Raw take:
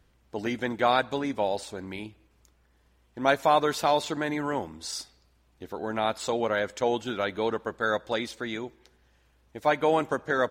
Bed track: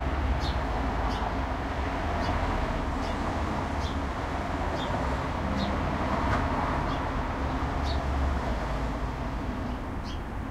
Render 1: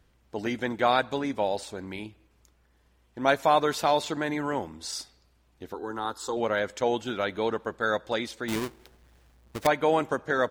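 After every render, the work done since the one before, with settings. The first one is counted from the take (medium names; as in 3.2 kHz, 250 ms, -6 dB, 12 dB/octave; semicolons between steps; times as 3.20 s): 5.74–6.37 s: static phaser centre 630 Hz, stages 6; 8.48–9.67 s: square wave that keeps the level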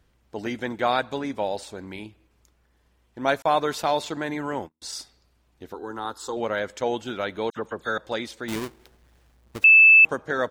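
3.42–4.82 s: gate -39 dBFS, range -41 dB; 7.50–7.98 s: phase dispersion lows, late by 62 ms, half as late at 2.9 kHz; 9.64–10.05 s: bleep 2.63 kHz -9 dBFS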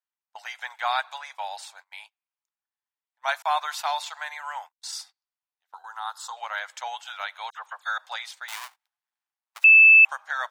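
steep high-pass 750 Hz 48 dB/octave; gate -46 dBFS, range -26 dB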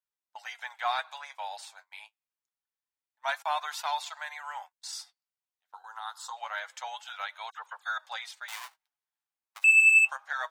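saturation -11 dBFS, distortion -18 dB; flange 0.26 Hz, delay 1.9 ms, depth 7.9 ms, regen +50%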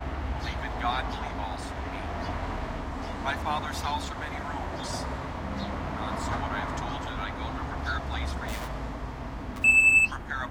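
add bed track -4.5 dB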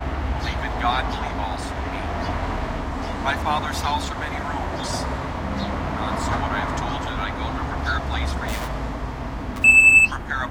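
trim +7 dB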